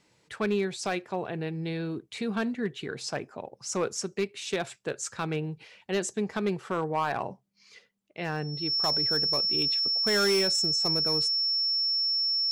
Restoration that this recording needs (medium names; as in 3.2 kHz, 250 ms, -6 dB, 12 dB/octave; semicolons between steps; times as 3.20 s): clip repair -20 dBFS; band-stop 5.4 kHz, Q 30